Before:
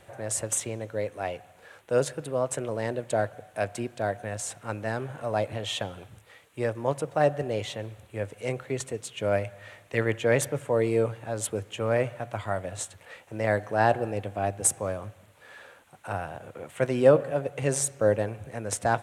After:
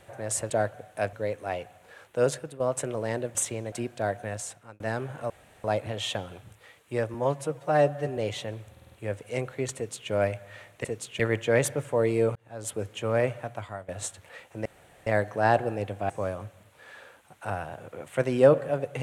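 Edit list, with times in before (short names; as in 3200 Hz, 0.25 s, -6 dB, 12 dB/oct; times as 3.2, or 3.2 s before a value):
0.5–0.87 swap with 3.09–3.72
2.09–2.34 fade out, to -12 dB
4.31–4.8 fade out
5.3 insert room tone 0.34 s
6.8–7.49 stretch 1.5×
8.03 stutter 0.05 s, 5 plays
8.87–9.22 copy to 9.96
11.12–11.63 fade in
12.17–12.65 fade out, to -16.5 dB
13.42 insert room tone 0.41 s
14.45–14.72 cut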